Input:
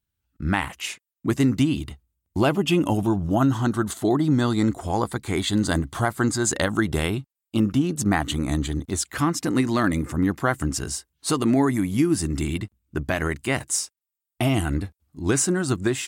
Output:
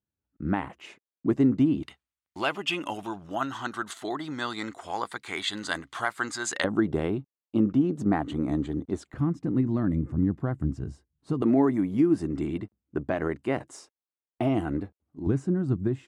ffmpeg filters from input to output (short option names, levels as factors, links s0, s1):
-af "asetnsamples=n=441:p=0,asendcmd='1.83 bandpass f 2100;6.64 bandpass f 370;9.14 bandpass f 130;11.42 bandpass f 430;15.27 bandpass f 140',bandpass=f=360:t=q:w=0.72:csg=0"